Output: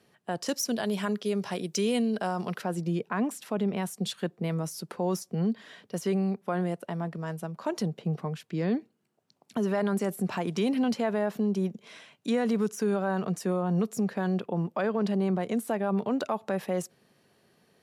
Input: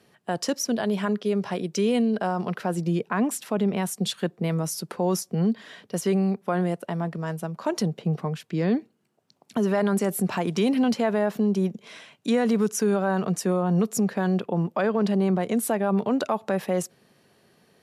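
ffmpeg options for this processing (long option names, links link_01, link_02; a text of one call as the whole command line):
ffmpeg -i in.wav -filter_complex "[0:a]deesser=0.55,asettb=1/sr,asplit=3[link_01][link_02][link_03];[link_01]atrim=end=0.464[link_04];[link_02]atrim=start=0.46:end=2.62,asetpts=PTS-STARTPTS,afade=type=in:duration=0.004:curve=qsin,afade=type=out:start_time=2.156:duration=0.004:curve=qsin,highshelf=frequency=3700:gain=10[link_05];[link_03]atrim=start=2.616[link_06];[link_04][link_05]acrossfade=duration=0.004:curve1=hsin:curve2=qsin[link_07];[link_07][link_06]acrossfade=duration=0.004:curve1=qsin:curve2=hsin,volume=-4.5dB" out.wav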